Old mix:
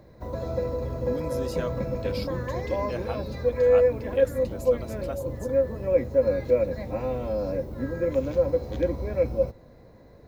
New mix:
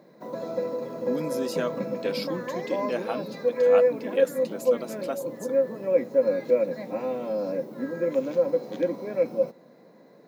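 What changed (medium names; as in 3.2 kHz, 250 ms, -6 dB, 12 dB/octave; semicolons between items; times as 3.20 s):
speech +4.5 dB; master: add brick-wall FIR high-pass 150 Hz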